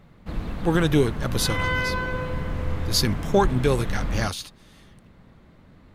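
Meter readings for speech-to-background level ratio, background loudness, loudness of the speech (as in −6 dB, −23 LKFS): 5.0 dB, −29.5 LKFS, −24.5 LKFS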